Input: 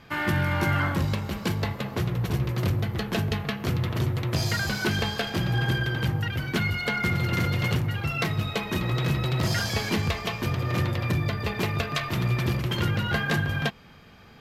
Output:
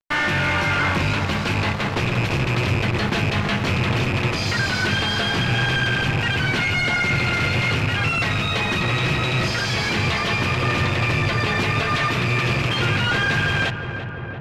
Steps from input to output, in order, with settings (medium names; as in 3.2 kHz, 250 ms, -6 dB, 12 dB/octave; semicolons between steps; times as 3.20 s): rattle on loud lows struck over -26 dBFS, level -20 dBFS; high-pass 73 Hz 12 dB/octave; tilt shelf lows -8.5 dB, about 1.3 kHz; peak limiter -19.5 dBFS, peak gain reduction 9 dB; fuzz box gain 42 dB, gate -41 dBFS; tape spacing loss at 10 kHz 23 dB; filtered feedback delay 342 ms, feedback 82%, low-pass 1.9 kHz, level -9 dB; trim -1.5 dB